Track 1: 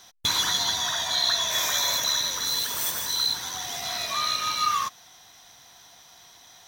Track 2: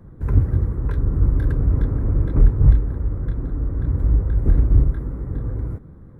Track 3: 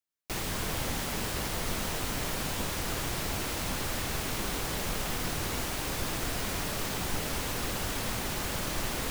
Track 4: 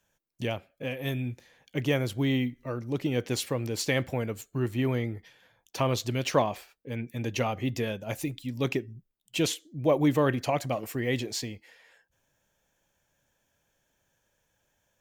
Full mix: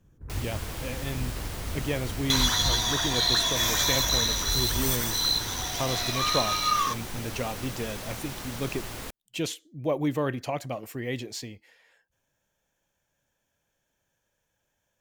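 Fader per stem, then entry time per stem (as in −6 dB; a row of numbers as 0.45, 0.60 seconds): −0.5, −18.0, −5.0, −3.5 decibels; 2.05, 0.00, 0.00, 0.00 seconds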